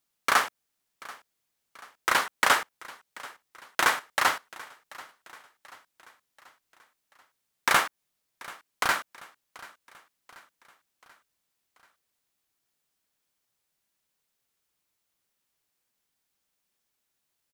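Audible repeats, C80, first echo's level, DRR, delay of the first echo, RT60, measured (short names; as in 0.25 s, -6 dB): 3, none, -20.5 dB, none, 0.735 s, none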